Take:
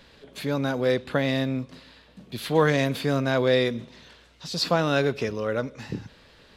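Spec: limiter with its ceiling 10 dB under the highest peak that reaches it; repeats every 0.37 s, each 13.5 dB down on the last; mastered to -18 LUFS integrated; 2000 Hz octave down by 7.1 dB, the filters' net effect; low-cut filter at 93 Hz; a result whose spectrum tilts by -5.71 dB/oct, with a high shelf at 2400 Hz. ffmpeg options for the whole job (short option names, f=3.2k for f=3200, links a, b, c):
-af "highpass=93,equalizer=f=2k:t=o:g=-7.5,highshelf=f=2.4k:g=-4.5,alimiter=limit=-18.5dB:level=0:latency=1,aecho=1:1:370|740:0.211|0.0444,volume=11.5dB"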